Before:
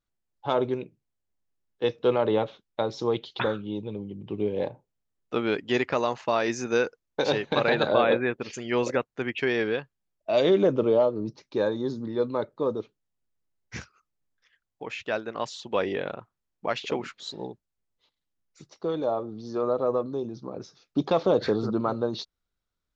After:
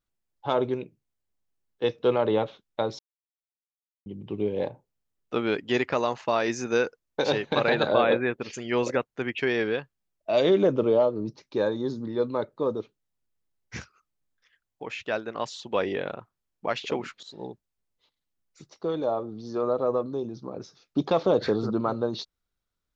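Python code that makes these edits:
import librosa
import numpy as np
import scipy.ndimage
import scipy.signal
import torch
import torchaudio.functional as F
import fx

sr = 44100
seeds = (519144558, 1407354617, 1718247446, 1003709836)

y = fx.edit(x, sr, fx.silence(start_s=2.99, length_s=1.07),
    fx.fade_in_from(start_s=17.23, length_s=0.27, floor_db=-13.5), tone=tone)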